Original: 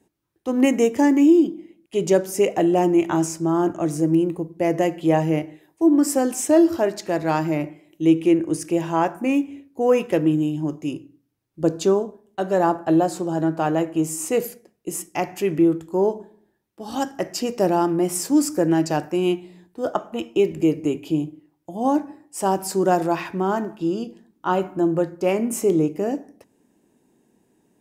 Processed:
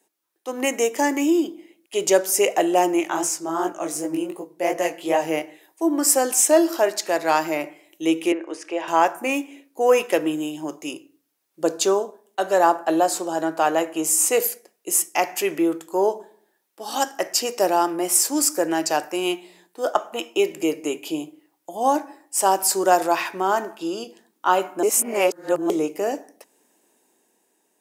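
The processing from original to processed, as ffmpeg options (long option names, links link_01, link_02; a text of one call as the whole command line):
ffmpeg -i in.wav -filter_complex "[0:a]asplit=3[link_01][link_02][link_03];[link_01]afade=type=out:start_time=2.99:duration=0.02[link_04];[link_02]flanger=delay=16:depth=7.9:speed=2.7,afade=type=in:start_time=2.99:duration=0.02,afade=type=out:start_time=5.27:duration=0.02[link_05];[link_03]afade=type=in:start_time=5.27:duration=0.02[link_06];[link_04][link_05][link_06]amix=inputs=3:normalize=0,asettb=1/sr,asplit=3[link_07][link_08][link_09];[link_07]atrim=end=8.324[link_10];[link_08]atrim=start=8.32:end=8.88,asetpts=PTS-STARTPTS,afade=type=in:duration=0.004:curve=qsin,afade=type=out:start_time=0.556:duration=0.004:curve=qsin,highpass=400,lowpass=2900[link_11];[link_09]atrim=start=8.876[link_12];[link_10][link_11]acrossfade=duration=0.004:curve1=hsin:curve2=qsin[link_13];[link_13][link_12]acrossfade=duration=0.004:curve1=qsin:curve2=hsin,asplit=3[link_14][link_15][link_16];[link_14]atrim=end=24.832[link_17];[link_15]atrim=start=24.828:end=25.702,asetpts=PTS-STARTPTS,areverse[link_18];[link_16]atrim=start=25.698[link_19];[link_17][link_18]acrossfade=duration=0.004:curve1=hsin:curve2=hsin[link_20];[link_20][link_19]acrossfade=duration=0.004:curve1=hsin:curve2=hsin,highpass=530,highshelf=frequency=4900:gain=7.5,dynaudnorm=framelen=290:gausssize=7:maxgain=5dB" out.wav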